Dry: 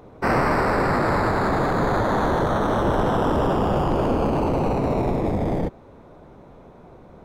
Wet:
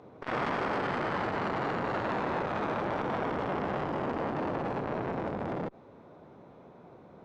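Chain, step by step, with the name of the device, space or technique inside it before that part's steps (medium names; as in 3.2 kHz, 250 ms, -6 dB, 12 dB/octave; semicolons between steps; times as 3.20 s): valve radio (band-pass 120–5500 Hz; valve stage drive 19 dB, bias 0.55; transformer saturation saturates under 870 Hz); trim -3 dB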